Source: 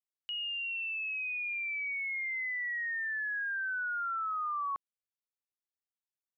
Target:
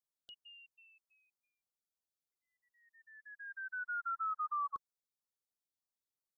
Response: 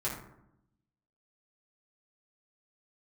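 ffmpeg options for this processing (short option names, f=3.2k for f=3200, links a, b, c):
-af "asuperstop=centerf=2200:order=8:qfactor=1.2,afftfilt=real='re*(1-between(b*sr/1024,760*pow(3000/760,0.5+0.5*sin(2*PI*3.1*pts/sr))/1.41,760*pow(3000/760,0.5+0.5*sin(2*PI*3.1*pts/sr))*1.41))':imag='im*(1-between(b*sr/1024,760*pow(3000/760,0.5+0.5*sin(2*PI*3.1*pts/sr))/1.41,760*pow(3000/760,0.5+0.5*sin(2*PI*3.1*pts/sr))*1.41))':win_size=1024:overlap=0.75,volume=-1dB"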